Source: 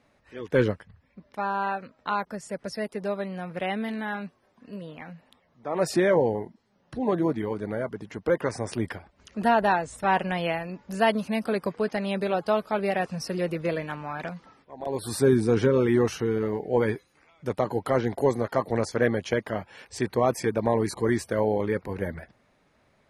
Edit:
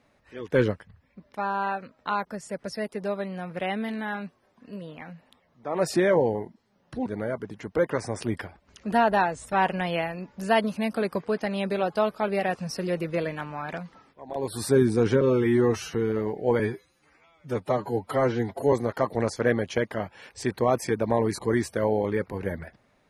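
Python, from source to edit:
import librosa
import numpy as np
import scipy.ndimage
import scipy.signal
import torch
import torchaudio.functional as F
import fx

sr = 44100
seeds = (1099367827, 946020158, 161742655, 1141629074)

y = fx.edit(x, sr, fx.cut(start_s=7.06, length_s=0.51),
    fx.stretch_span(start_s=15.72, length_s=0.49, factor=1.5),
    fx.stretch_span(start_s=16.86, length_s=1.42, factor=1.5), tone=tone)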